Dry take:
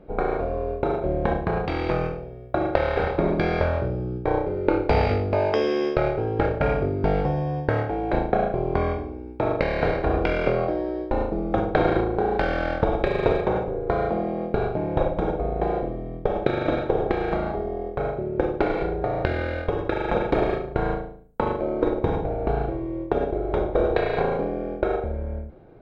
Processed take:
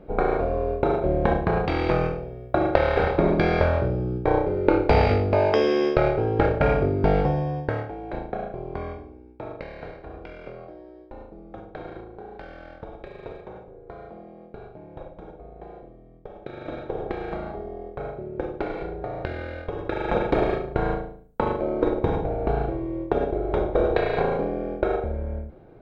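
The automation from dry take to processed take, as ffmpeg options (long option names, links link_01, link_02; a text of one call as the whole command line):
ffmpeg -i in.wav -af "volume=19.5dB,afade=type=out:start_time=7.21:duration=0.74:silence=0.281838,afade=type=out:start_time=8.88:duration=1.12:silence=0.375837,afade=type=in:start_time=16.39:duration=0.69:silence=0.281838,afade=type=in:start_time=19.72:duration=0.43:silence=0.473151" out.wav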